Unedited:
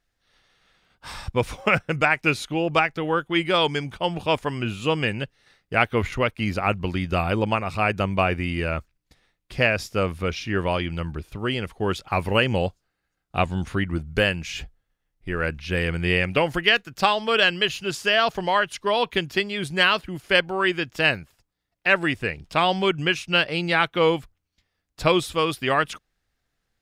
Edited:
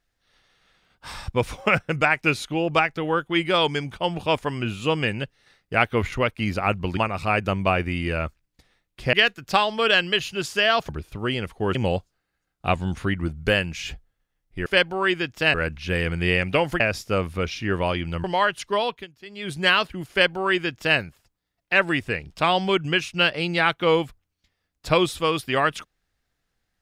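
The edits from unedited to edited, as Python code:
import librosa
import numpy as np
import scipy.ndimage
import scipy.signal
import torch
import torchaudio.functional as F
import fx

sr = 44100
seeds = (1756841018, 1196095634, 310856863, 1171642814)

y = fx.edit(x, sr, fx.cut(start_s=6.97, length_s=0.52),
    fx.swap(start_s=9.65, length_s=1.44, other_s=16.62, other_length_s=1.76),
    fx.cut(start_s=11.95, length_s=0.5),
    fx.fade_down_up(start_s=18.89, length_s=0.82, db=-20.5, fade_s=0.32),
    fx.duplicate(start_s=20.24, length_s=0.88, to_s=15.36), tone=tone)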